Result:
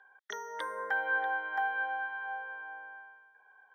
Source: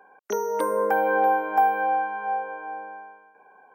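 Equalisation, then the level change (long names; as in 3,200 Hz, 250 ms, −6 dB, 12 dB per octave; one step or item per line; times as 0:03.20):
pair of resonant band-passes 2,500 Hz, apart 0.86 octaves
+6.5 dB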